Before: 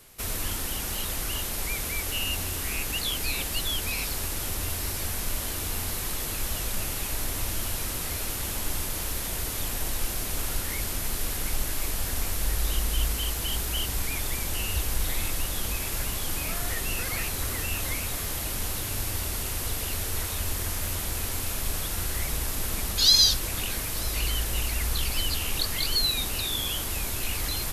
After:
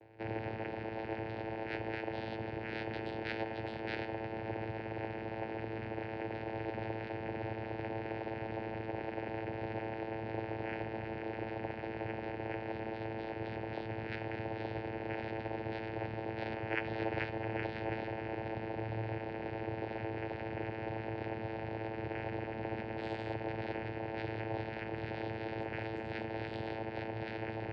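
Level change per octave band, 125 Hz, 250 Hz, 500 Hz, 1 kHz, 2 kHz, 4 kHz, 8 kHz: −8.0 dB, 0.0 dB, +2.5 dB, −1.5 dB, −7.5 dB, −25.5 dB, below −40 dB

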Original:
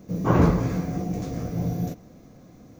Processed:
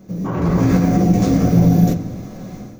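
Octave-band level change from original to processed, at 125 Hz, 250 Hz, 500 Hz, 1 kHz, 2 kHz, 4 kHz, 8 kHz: +9.5, +11.0, +6.0, +5.0, +5.0, +9.5, +11.0 decibels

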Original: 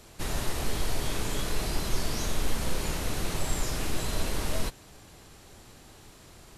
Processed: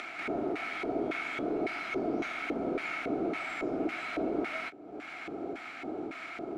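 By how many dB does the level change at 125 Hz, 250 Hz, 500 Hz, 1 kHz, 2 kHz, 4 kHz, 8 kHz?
−16.0, +4.0, +4.0, +1.0, +3.5, −11.0, −23.5 decibels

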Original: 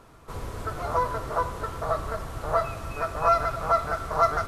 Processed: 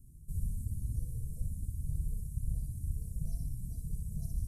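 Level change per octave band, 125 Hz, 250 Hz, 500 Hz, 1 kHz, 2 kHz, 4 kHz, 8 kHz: −0.5 dB, −7.0 dB, −40.0 dB, below −40 dB, below −40 dB, below −25 dB, −5.5 dB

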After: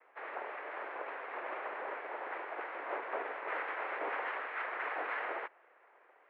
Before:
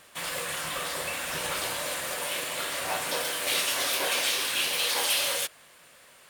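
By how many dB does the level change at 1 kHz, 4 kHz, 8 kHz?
−3.5 dB, −30.5 dB, below −40 dB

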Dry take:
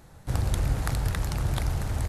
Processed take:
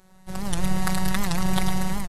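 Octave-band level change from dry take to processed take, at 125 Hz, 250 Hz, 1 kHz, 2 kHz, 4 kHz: −2.5, +11.0, +7.5, +6.5, +7.0 decibels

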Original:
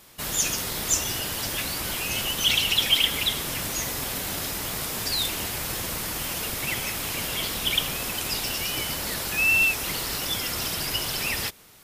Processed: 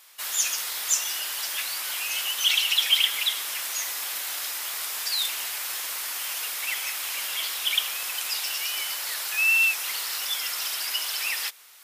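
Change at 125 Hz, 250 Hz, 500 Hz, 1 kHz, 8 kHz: below −35 dB, below −20 dB, −13.0 dB, −4.0 dB, 0.0 dB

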